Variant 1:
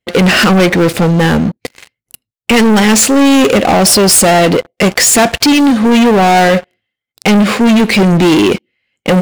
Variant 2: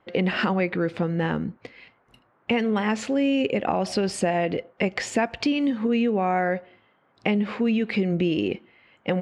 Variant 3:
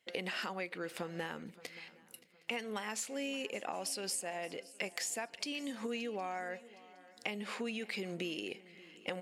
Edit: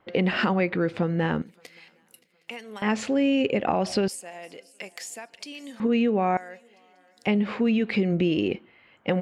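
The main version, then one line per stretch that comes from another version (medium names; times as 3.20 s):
2
1.42–2.82 s: from 3
4.08–5.80 s: from 3
6.37–7.27 s: from 3
not used: 1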